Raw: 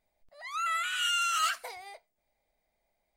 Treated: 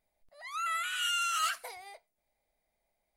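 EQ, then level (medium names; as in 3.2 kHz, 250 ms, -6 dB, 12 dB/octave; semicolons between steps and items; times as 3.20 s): peaking EQ 11 kHz +9 dB 0.25 oct; -2.5 dB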